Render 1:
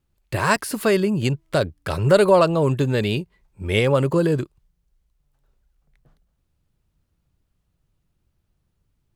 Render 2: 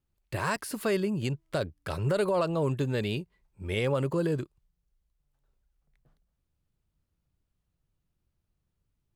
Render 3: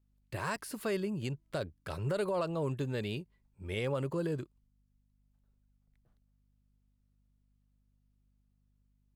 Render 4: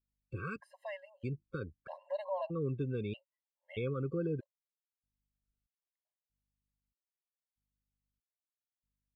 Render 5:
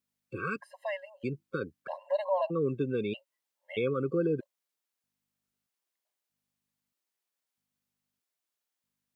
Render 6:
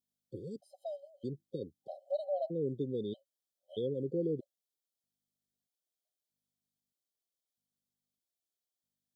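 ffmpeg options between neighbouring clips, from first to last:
-af "alimiter=limit=0.316:level=0:latency=1:release=58,volume=0.376"
-af "aeval=exprs='val(0)+0.000562*(sin(2*PI*50*n/s)+sin(2*PI*2*50*n/s)/2+sin(2*PI*3*50*n/s)/3+sin(2*PI*4*50*n/s)/4+sin(2*PI*5*50*n/s)/5)':c=same,volume=0.501"
-af "aemphasis=mode=reproduction:type=50fm,afftdn=nr=17:nf=-47,afftfilt=real='re*gt(sin(2*PI*0.79*pts/sr)*(1-2*mod(floor(b*sr/1024/540),2)),0)':imag='im*gt(sin(2*PI*0.79*pts/sr)*(1-2*mod(floor(b*sr/1024/540),2)),0)':win_size=1024:overlap=0.75,volume=0.891"
-af "highpass=210,volume=2.51"
-af "afftfilt=real='re*(1-between(b*sr/4096,790,3000))':imag='im*(1-between(b*sr/4096,790,3000))':win_size=4096:overlap=0.75,volume=0.562"

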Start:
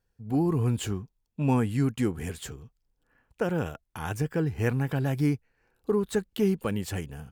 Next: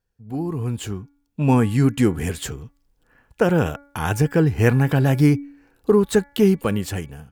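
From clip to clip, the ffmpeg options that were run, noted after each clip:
-af "bandreject=f=283.8:t=h:w=4,bandreject=f=567.6:t=h:w=4,bandreject=f=851.4:t=h:w=4,bandreject=f=1135.2:t=h:w=4,bandreject=f=1419:t=h:w=4,bandreject=f=1702.8:t=h:w=4,bandreject=f=1986.6:t=h:w=4,bandreject=f=2270.4:t=h:w=4,dynaudnorm=f=510:g=5:m=4.47,volume=0.841"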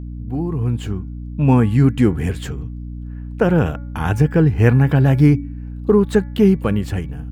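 -af "bass=f=250:g=4,treble=f=4000:g=-9,aeval=exprs='val(0)+0.0355*(sin(2*PI*60*n/s)+sin(2*PI*2*60*n/s)/2+sin(2*PI*3*60*n/s)/3+sin(2*PI*4*60*n/s)/4+sin(2*PI*5*60*n/s)/5)':c=same,volume=1.12"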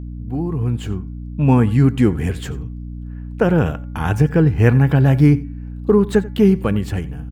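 -af "aecho=1:1:89:0.1"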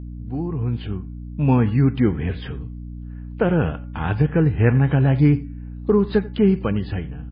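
-af "volume=0.708" -ar 11025 -c:a libmp3lame -b:a 16k

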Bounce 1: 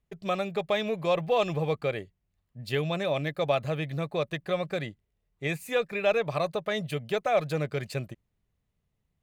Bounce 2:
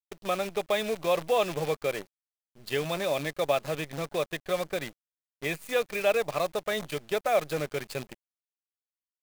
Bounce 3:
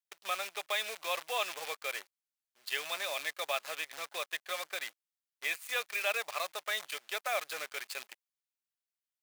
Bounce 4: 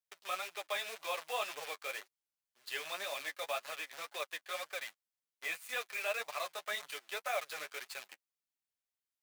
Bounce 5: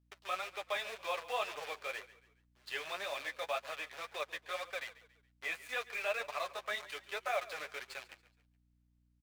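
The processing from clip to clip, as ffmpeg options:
-af "highpass=210,acrusher=bits=7:dc=4:mix=0:aa=0.000001"
-af "highpass=1200"
-filter_complex "[0:a]acrossover=split=220|1700[s0][s1][s2];[s2]asoftclip=type=tanh:threshold=0.0211[s3];[s0][s1][s3]amix=inputs=3:normalize=0,flanger=delay=6.5:depth=6.5:regen=13:speed=1.9:shape=triangular,volume=1.12"
-filter_complex "[0:a]aeval=exprs='val(0)+0.000224*(sin(2*PI*60*n/s)+sin(2*PI*2*60*n/s)/2+sin(2*PI*3*60*n/s)/3+sin(2*PI*4*60*n/s)/4+sin(2*PI*5*60*n/s)/5)':c=same,lowpass=f=3500:p=1,asplit=4[s0][s1][s2][s3];[s1]adelay=140,afreqshift=-32,volume=0.133[s4];[s2]adelay=280,afreqshift=-64,volume=0.0507[s5];[s3]adelay=420,afreqshift=-96,volume=0.0193[s6];[s0][s4][s5][s6]amix=inputs=4:normalize=0,volume=1.19"

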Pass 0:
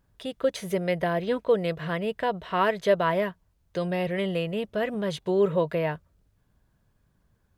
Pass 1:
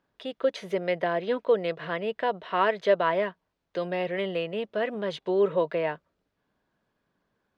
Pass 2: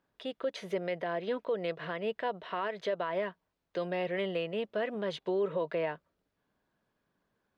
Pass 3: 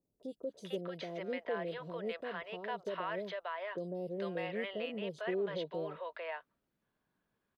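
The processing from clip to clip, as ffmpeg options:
-filter_complex "[0:a]acrossover=split=210 5200:gain=0.0891 1 0.112[s0][s1][s2];[s0][s1][s2]amix=inputs=3:normalize=0"
-af "alimiter=limit=0.0944:level=0:latency=1:release=115,volume=0.708"
-filter_complex "[0:a]acrossover=split=600|5600[s0][s1][s2];[s2]adelay=30[s3];[s1]adelay=450[s4];[s0][s4][s3]amix=inputs=3:normalize=0,volume=0.708"

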